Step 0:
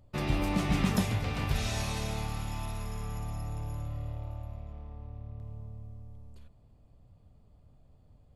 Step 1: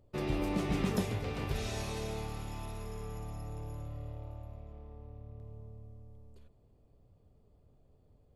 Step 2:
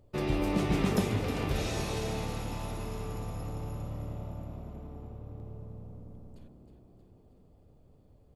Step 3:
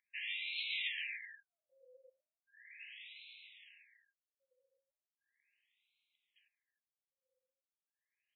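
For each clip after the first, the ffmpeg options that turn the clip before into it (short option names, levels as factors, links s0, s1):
-af "equalizer=f=410:t=o:w=0.83:g=10,volume=0.501"
-filter_complex "[0:a]asplit=8[s0][s1][s2][s3][s4][s5][s6][s7];[s1]adelay=315,afreqshift=62,volume=0.335[s8];[s2]adelay=630,afreqshift=124,volume=0.188[s9];[s3]adelay=945,afreqshift=186,volume=0.105[s10];[s4]adelay=1260,afreqshift=248,volume=0.0589[s11];[s5]adelay=1575,afreqshift=310,volume=0.0331[s12];[s6]adelay=1890,afreqshift=372,volume=0.0184[s13];[s7]adelay=2205,afreqshift=434,volume=0.0104[s14];[s0][s8][s9][s10][s11][s12][s13][s14]amix=inputs=8:normalize=0,volume=1.5"
-af "aderivative,afftfilt=real='re*(1-between(b*sr/4096,540,1600))':imag='im*(1-between(b*sr/4096,540,1600))':win_size=4096:overlap=0.75,afftfilt=real='re*between(b*sr/1024,700*pow(3000/700,0.5+0.5*sin(2*PI*0.37*pts/sr))/1.41,700*pow(3000/700,0.5+0.5*sin(2*PI*0.37*pts/sr))*1.41)':imag='im*between(b*sr/1024,700*pow(3000/700,0.5+0.5*sin(2*PI*0.37*pts/sr))/1.41,700*pow(3000/700,0.5+0.5*sin(2*PI*0.37*pts/sr))*1.41)':win_size=1024:overlap=0.75,volume=4.47"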